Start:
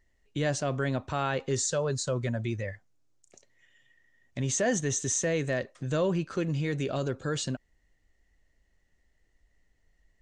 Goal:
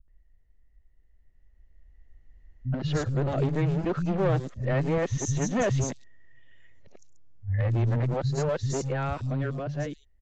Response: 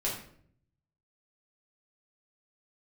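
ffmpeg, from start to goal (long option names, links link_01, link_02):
-filter_complex "[0:a]areverse,aemphasis=mode=reproduction:type=bsi,dynaudnorm=framelen=540:gausssize=7:maxgain=12.5dB,aresample=16000,volume=13.5dB,asoftclip=hard,volume=-13.5dB,aresample=44100,acrossover=split=190|4500[link_01][link_02][link_03];[link_02]adelay=80[link_04];[link_03]adelay=190[link_05];[link_01][link_04][link_05]amix=inputs=3:normalize=0,volume=-7.5dB"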